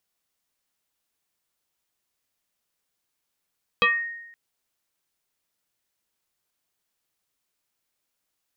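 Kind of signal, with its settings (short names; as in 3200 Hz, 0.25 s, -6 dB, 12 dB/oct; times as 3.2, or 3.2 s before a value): FM tone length 0.52 s, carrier 1860 Hz, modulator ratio 0.37, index 2.4, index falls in 0.34 s exponential, decay 0.93 s, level -14 dB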